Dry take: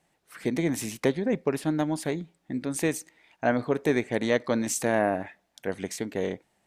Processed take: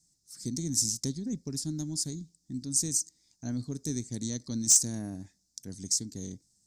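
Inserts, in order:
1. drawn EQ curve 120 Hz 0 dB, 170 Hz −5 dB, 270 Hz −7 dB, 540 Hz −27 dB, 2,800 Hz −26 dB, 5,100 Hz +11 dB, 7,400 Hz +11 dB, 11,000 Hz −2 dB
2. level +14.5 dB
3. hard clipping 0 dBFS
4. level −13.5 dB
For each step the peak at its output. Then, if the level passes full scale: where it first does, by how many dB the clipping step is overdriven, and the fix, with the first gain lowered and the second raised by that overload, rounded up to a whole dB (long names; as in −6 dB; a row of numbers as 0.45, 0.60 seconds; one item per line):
−8.0, +6.5, 0.0, −13.5 dBFS
step 2, 6.5 dB
step 2 +7.5 dB, step 4 −6.5 dB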